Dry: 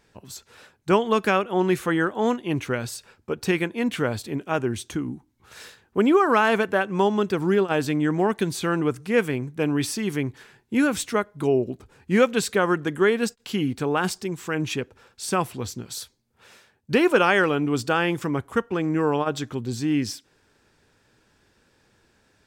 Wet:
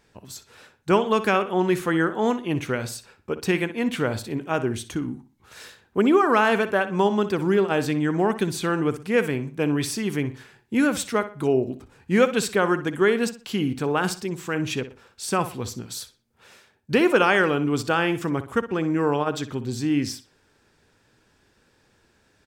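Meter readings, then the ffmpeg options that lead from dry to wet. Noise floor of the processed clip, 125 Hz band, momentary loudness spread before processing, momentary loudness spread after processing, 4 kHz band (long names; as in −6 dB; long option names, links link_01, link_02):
−63 dBFS, 0.0 dB, 13 LU, 13 LU, 0.0 dB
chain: -filter_complex "[0:a]asplit=2[link_01][link_02];[link_02]adelay=61,lowpass=frequency=4800:poles=1,volume=-12.5dB,asplit=2[link_03][link_04];[link_04]adelay=61,lowpass=frequency=4800:poles=1,volume=0.33,asplit=2[link_05][link_06];[link_06]adelay=61,lowpass=frequency=4800:poles=1,volume=0.33[link_07];[link_01][link_03][link_05][link_07]amix=inputs=4:normalize=0"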